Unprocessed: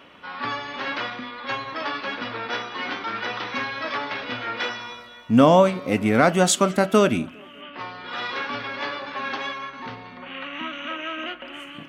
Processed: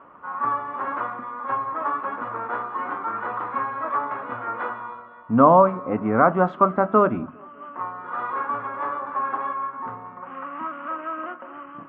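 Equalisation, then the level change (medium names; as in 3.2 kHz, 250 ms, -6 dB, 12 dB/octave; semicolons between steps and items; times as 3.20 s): four-pole ladder low-pass 1.3 kHz, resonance 60%; hum notches 50/100/150/200/250 Hz; +8.0 dB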